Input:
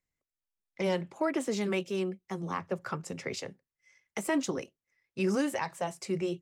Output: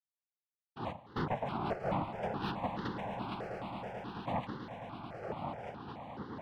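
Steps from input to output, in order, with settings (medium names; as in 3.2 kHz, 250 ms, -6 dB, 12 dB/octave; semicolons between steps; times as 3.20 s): Doppler pass-by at 2.27 s, 17 m/s, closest 12 m; steep high-pass 210 Hz; static phaser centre 480 Hz, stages 6; crossover distortion -59.5 dBFS; noise-vocoded speech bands 2; wavefolder -31.5 dBFS; distance through air 400 m; on a send: echo with a slow build-up 109 ms, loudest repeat 8, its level -13.5 dB; on the sum: stepped phaser 4.7 Hz 990–2400 Hz; trim +9 dB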